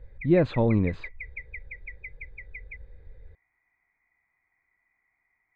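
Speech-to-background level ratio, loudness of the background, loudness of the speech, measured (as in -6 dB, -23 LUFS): 18.0 dB, -42.0 LUFS, -24.0 LUFS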